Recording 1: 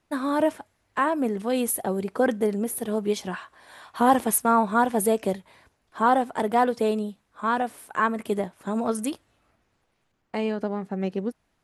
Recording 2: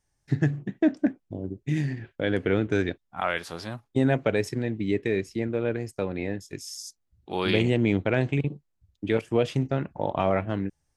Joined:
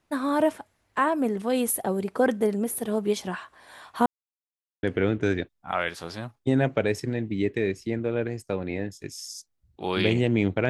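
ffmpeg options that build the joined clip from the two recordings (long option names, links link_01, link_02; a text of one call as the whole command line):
ffmpeg -i cue0.wav -i cue1.wav -filter_complex "[0:a]apad=whole_dur=10.69,atrim=end=10.69,asplit=2[link_01][link_02];[link_01]atrim=end=4.06,asetpts=PTS-STARTPTS,afade=type=out:start_time=4.056:duration=0.004:curve=hsin[link_03];[link_02]atrim=start=4.06:end=4.83,asetpts=PTS-STARTPTS,volume=0[link_04];[1:a]atrim=start=2.32:end=8.18,asetpts=PTS-STARTPTS,afade=type=in:duration=0.004:curve=hsin[link_05];[link_03][link_04][link_05]concat=n=3:v=0:a=1" out.wav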